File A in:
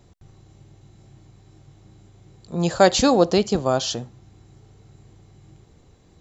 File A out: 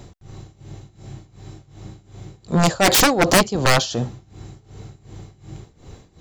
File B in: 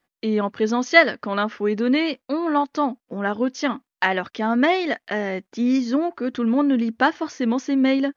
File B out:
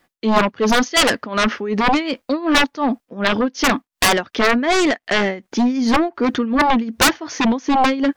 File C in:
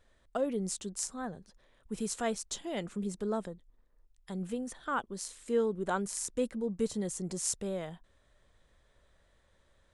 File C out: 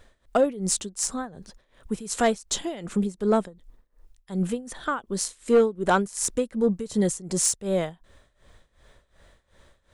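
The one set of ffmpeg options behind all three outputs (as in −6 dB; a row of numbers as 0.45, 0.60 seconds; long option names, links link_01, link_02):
-af "tremolo=f=2.7:d=0.88,aeval=exprs='0.473*(cos(1*acos(clip(val(0)/0.473,-1,1)))-cos(1*PI/2))+0.188*(cos(7*acos(clip(val(0)/0.473,-1,1)))-cos(7*PI/2))':channel_layout=same,aeval=exprs='0.266*(abs(mod(val(0)/0.266+3,4)-2)-1)':channel_layout=same,volume=8.5dB"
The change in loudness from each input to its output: +3.0, +4.0, +9.5 LU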